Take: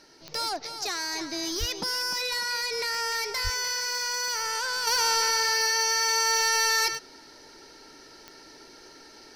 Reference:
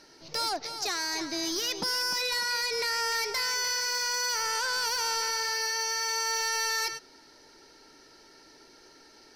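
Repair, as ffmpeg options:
ffmpeg -i in.wav -filter_complex "[0:a]adeclick=threshold=4,asplit=3[link_01][link_02][link_03];[link_01]afade=type=out:start_time=1.59:duration=0.02[link_04];[link_02]highpass=frequency=140:width=0.5412,highpass=frequency=140:width=1.3066,afade=type=in:start_time=1.59:duration=0.02,afade=type=out:start_time=1.71:duration=0.02[link_05];[link_03]afade=type=in:start_time=1.71:duration=0.02[link_06];[link_04][link_05][link_06]amix=inputs=3:normalize=0,asplit=3[link_07][link_08][link_09];[link_07]afade=type=out:start_time=3.43:duration=0.02[link_10];[link_08]highpass=frequency=140:width=0.5412,highpass=frequency=140:width=1.3066,afade=type=in:start_time=3.43:duration=0.02,afade=type=out:start_time=3.55:duration=0.02[link_11];[link_09]afade=type=in:start_time=3.55:duration=0.02[link_12];[link_10][link_11][link_12]amix=inputs=3:normalize=0,asetnsamples=nb_out_samples=441:pad=0,asendcmd='4.87 volume volume -5.5dB',volume=0dB" out.wav

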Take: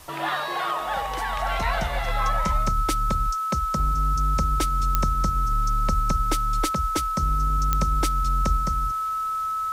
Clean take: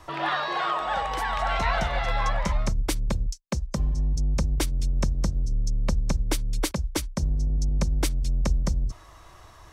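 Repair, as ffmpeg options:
ffmpeg -i in.wav -af "adeclick=threshold=4,bandreject=frequency=1300:width=30,afwtdn=0.004,asetnsamples=nb_out_samples=441:pad=0,asendcmd='8.57 volume volume 3dB',volume=0dB" out.wav

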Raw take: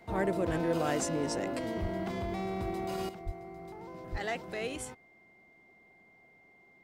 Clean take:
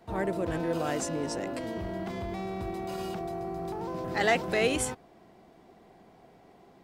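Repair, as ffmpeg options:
ffmpeg -i in.wav -filter_complex "[0:a]bandreject=frequency=2100:width=30,asplit=3[link_01][link_02][link_03];[link_01]afade=type=out:start_time=1.81:duration=0.02[link_04];[link_02]highpass=frequency=140:width=0.5412,highpass=frequency=140:width=1.3066,afade=type=in:start_time=1.81:duration=0.02,afade=type=out:start_time=1.93:duration=0.02[link_05];[link_03]afade=type=in:start_time=1.93:duration=0.02[link_06];[link_04][link_05][link_06]amix=inputs=3:normalize=0,asplit=3[link_07][link_08][link_09];[link_07]afade=type=out:start_time=3.25:duration=0.02[link_10];[link_08]highpass=frequency=140:width=0.5412,highpass=frequency=140:width=1.3066,afade=type=in:start_time=3.25:duration=0.02,afade=type=out:start_time=3.37:duration=0.02[link_11];[link_09]afade=type=in:start_time=3.37:duration=0.02[link_12];[link_10][link_11][link_12]amix=inputs=3:normalize=0,asplit=3[link_13][link_14][link_15];[link_13]afade=type=out:start_time=4.11:duration=0.02[link_16];[link_14]highpass=frequency=140:width=0.5412,highpass=frequency=140:width=1.3066,afade=type=in:start_time=4.11:duration=0.02,afade=type=out:start_time=4.23:duration=0.02[link_17];[link_15]afade=type=in:start_time=4.23:duration=0.02[link_18];[link_16][link_17][link_18]amix=inputs=3:normalize=0,asetnsamples=nb_out_samples=441:pad=0,asendcmd='3.09 volume volume 10.5dB',volume=0dB" out.wav

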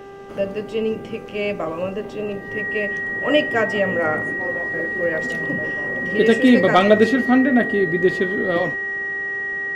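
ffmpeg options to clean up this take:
ffmpeg -i in.wav -af "bandreject=frequency=395.9:width_type=h:width=4,bandreject=frequency=791.8:width_type=h:width=4,bandreject=frequency=1187.7:width_type=h:width=4,bandreject=frequency=1583.6:width_type=h:width=4,bandreject=frequency=1979.5:width_type=h:width=4,bandreject=frequency=1900:width=30" out.wav

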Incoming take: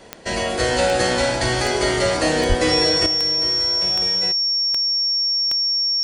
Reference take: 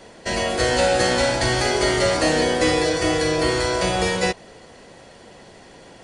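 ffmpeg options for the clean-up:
ffmpeg -i in.wav -filter_complex "[0:a]adeclick=threshold=4,bandreject=frequency=5500:width=30,asplit=3[link_01][link_02][link_03];[link_01]afade=type=out:start_time=2.48:duration=0.02[link_04];[link_02]highpass=frequency=140:width=0.5412,highpass=frequency=140:width=1.3066,afade=type=in:start_time=2.48:duration=0.02,afade=type=out:start_time=2.6:duration=0.02[link_05];[link_03]afade=type=in:start_time=2.6:duration=0.02[link_06];[link_04][link_05][link_06]amix=inputs=3:normalize=0,asetnsamples=nb_out_samples=441:pad=0,asendcmd='3.06 volume volume 11dB',volume=0dB" out.wav

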